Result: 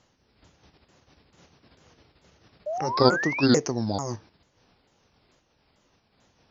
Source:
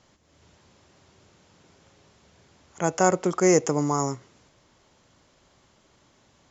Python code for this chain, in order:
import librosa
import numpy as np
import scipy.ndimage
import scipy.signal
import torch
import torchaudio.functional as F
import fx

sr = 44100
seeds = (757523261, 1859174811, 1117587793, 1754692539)

p1 = fx.pitch_ramps(x, sr, semitones=-7.0, every_ms=443)
p2 = fx.level_steps(p1, sr, step_db=20)
p3 = p1 + (p2 * librosa.db_to_amplitude(-2.5))
p4 = fx.spec_paint(p3, sr, seeds[0], shape='rise', start_s=2.66, length_s=0.8, low_hz=580.0, high_hz=2800.0, level_db=-27.0)
y = fx.am_noise(p4, sr, seeds[1], hz=5.7, depth_pct=60)